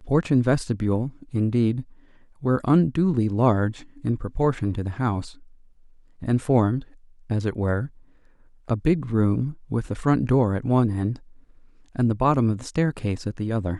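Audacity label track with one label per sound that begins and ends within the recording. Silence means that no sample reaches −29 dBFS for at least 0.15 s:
1.340000	1.810000	sound
2.440000	3.720000	sound
4.050000	5.270000	sound
6.220000	6.820000	sound
7.300000	7.860000	sound
8.700000	9.520000	sound
9.710000	11.160000	sound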